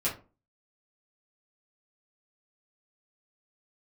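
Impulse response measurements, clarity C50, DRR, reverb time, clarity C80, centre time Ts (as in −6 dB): 10.0 dB, −7.5 dB, 0.35 s, 16.0 dB, 24 ms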